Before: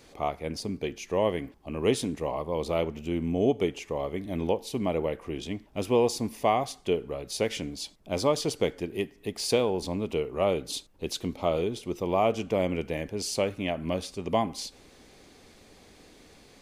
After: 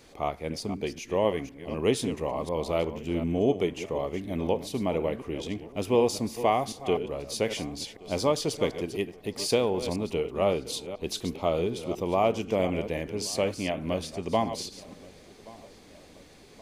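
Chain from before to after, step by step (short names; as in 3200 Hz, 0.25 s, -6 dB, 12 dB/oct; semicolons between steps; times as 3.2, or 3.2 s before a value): reverse delay 0.249 s, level -11 dB; darkening echo 1.125 s, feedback 57%, low-pass 2800 Hz, level -22 dB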